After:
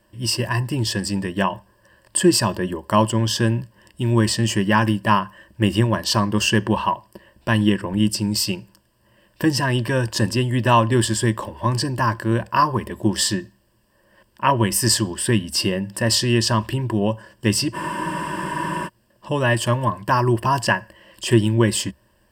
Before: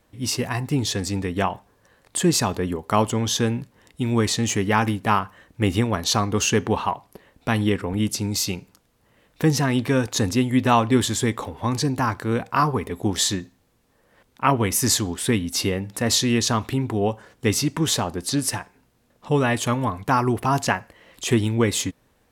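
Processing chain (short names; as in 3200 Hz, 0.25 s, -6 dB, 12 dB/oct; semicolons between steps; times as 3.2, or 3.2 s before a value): ripple EQ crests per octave 1.3, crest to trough 13 dB; spectral freeze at 17.77, 1.10 s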